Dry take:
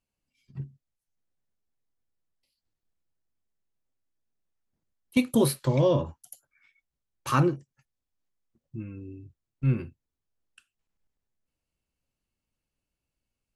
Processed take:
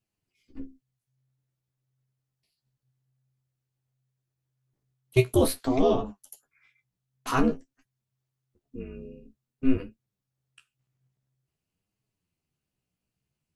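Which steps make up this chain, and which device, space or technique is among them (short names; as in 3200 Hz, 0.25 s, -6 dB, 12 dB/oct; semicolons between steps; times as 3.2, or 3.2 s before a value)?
alien voice (ring modulator 130 Hz; flange 0.5 Hz, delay 8.8 ms, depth 8.3 ms, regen +23%); gain +6.5 dB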